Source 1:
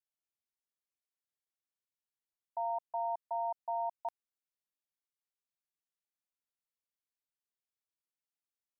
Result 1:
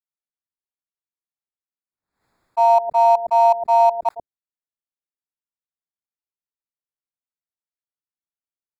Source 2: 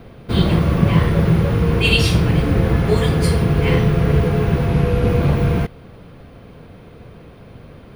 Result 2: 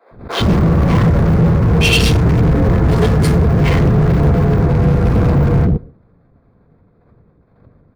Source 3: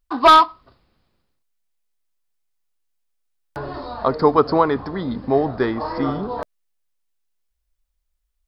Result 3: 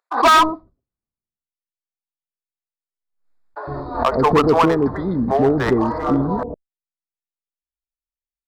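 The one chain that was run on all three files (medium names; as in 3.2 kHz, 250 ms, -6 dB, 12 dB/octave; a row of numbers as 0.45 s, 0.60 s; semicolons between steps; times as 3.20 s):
local Wiener filter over 15 samples; expander -28 dBFS; bands offset in time highs, lows 110 ms, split 510 Hz; hard clipper -14.5 dBFS; swell ahead of each attack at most 100 dB/s; peak normalisation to -6 dBFS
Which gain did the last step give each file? +30.0 dB, +6.5 dB, +5.5 dB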